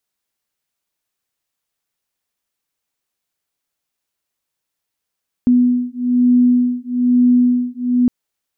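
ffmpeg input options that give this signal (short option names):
-f lavfi -i "aevalsrc='0.2*(sin(2*PI*246*t)+sin(2*PI*247.1*t))':d=2.61:s=44100"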